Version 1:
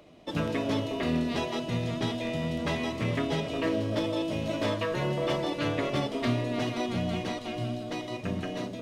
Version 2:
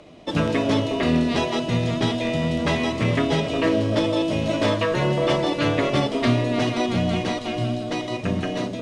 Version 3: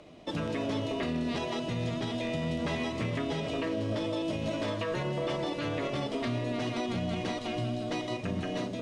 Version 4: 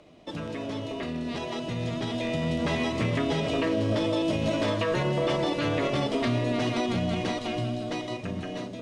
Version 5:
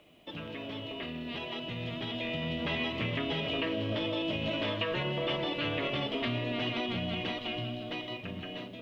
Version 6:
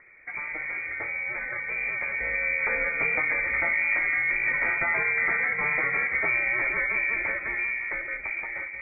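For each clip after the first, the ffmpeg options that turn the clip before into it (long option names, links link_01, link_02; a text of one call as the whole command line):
ffmpeg -i in.wav -af "lowpass=frequency=10000:width=0.5412,lowpass=frequency=10000:width=1.3066,volume=8dB" out.wav
ffmpeg -i in.wav -af "alimiter=limit=-18dB:level=0:latency=1:release=134,volume=-5.5dB" out.wav
ffmpeg -i in.wav -af "dynaudnorm=framelen=610:gausssize=7:maxgain=8dB,volume=-2dB" out.wav
ffmpeg -i in.wav -af "lowpass=frequency=3000:width_type=q:width=3.4,acrusher=bits=10:mix=0:aa=0.000001,volume=-7.5dB" out.wav
ffmpeg -i in.wav -af "lowpass=frequency=2100:width_type=q:width=0.5098,lowpass=frequency=2100:width_type=q:width=0.6013,lowpass=frequency=2100:width_type=q:width=0.9,lowpass=frequency=2100:width_type=q:width=2.563,afreqshift=-2500,volume=8dB" out.wav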